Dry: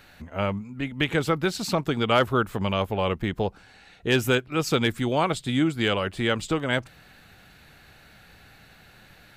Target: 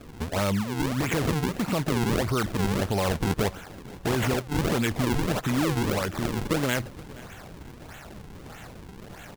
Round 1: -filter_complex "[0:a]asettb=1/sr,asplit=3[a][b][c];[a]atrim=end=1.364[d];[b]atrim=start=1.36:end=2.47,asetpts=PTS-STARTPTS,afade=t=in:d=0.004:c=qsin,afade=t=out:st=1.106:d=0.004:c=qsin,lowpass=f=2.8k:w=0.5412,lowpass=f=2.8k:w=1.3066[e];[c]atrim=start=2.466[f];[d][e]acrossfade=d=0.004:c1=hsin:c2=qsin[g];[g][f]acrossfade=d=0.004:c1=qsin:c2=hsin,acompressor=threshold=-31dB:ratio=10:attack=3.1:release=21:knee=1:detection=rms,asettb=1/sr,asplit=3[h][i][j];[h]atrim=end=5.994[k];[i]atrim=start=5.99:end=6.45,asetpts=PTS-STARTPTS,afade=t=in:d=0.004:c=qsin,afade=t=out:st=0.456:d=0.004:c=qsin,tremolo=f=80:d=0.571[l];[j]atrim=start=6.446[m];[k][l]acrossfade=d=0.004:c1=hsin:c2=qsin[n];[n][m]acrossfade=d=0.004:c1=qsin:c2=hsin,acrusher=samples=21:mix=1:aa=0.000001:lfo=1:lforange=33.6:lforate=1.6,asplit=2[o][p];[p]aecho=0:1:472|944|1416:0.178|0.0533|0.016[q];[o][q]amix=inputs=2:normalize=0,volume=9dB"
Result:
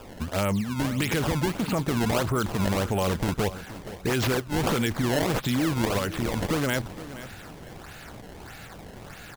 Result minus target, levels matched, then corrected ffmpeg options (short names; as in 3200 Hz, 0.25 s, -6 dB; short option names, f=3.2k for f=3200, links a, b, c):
echo-to-direct +6.5 dB; decimation with a swept rate: distortion -5 dB
-filter_complex "[0:a]asettb=1/sr,asplit=3[a][b][c];[a]atrim=end=1.364[d];[b]atrim=start=1.36:end=2.47,asetpts=PTS-STARTPTS,afade=t=in:d=0.004:c=qsin,afade=t=out:st=1.106:d=0.004:c=qsin,lowpass=f=2.8k:w=0.5412,lowpass=f=2.8k:w=1.3066[e];[c]atrim=start=2.466[f];[d][e]acrossfade=d=0.004:c1=hsin:c2=qsin[g];[g][f]acrossfade=d=0.004:c1=qsin:c2=hsin,acompressor=threshold=-31dB:ratio=10:attack=3.1:release=21:knee=1:detection=rms,asettb=1/sr,asplit=3[h][i][j];[h]atrim=end=5.994[k];[i]atrim=start=5.99:end=6.45,asetpts=PTS-STARTPTS,afade=t=in:d=0.004:c=qsin,afade=t=out:st=0.456:d=0.004:c=qsin,tremolo=f=80:d=0.571[l];[j]atrim=start=6.446[m];[k][l]acrossfade=d=0.004:c1=hsin:c2=qsin[n];[n][m]acrossfade=d=0.004:c1=qsin:c2=hsin,acrusher=samples=42:mix=1:aa=0.000001:lfo=1:lforange=67.2:lforate=1.6,asplit=2[o][p];[p]aecho=0:1:472|944:0.0841|0.0252[q];[o][q]amix=inputs=2:normalize=0,volume=9dB"